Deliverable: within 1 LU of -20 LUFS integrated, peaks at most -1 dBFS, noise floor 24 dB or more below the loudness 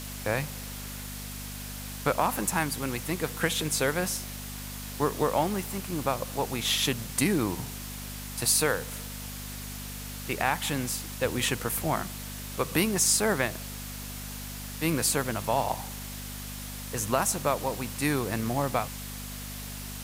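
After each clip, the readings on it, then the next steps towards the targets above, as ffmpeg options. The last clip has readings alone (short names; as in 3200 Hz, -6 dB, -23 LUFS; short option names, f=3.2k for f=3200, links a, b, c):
hum 50 Hz; harmonics up to 250 Hz; hum level -38 dBFS; noise floor -39 dBFS; noise floor target -54 dBFS; loudness -29.5 LUFS; peak -10.0 dBFS; loudness target -20.0 LUFS
-> -af "bandreject=f=50:t=h:w=4,bandreject=f=100:t=h:w=4,bandreject=f=150:t=h:w=4,bandreject=f=200:t=h:w=4,bandreject=f=250:t=h:w=4"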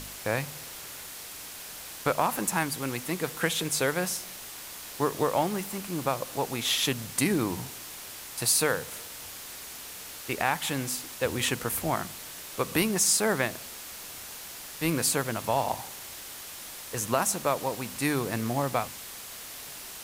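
hum none; noise floor -42 dBFS; noise floor target -54 dBFS
-> -af "afftdn=nr=12:nf=-42"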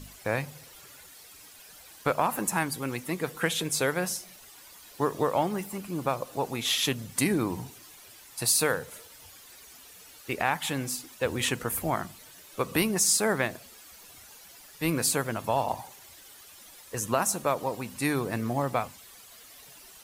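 noise floor -51 dBFS; noise floor target -53 dBFS
-> -af "afftdn=nr=6:nf=-51"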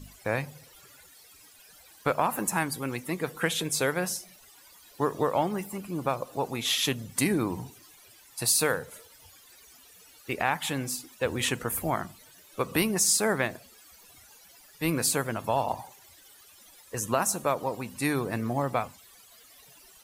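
noise floor -55 dBFS; loudness -28.5 LUFS; peak -10.0 dBFS; loudness target -20.0 LUFS
-> -af "volume=8.5dB"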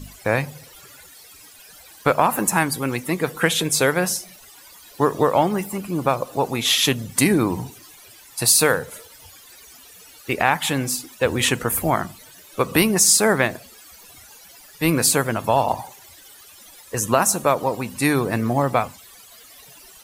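loudness -20.0 LUFS; peak -1.5 dBFS; noise floor -47 dBFS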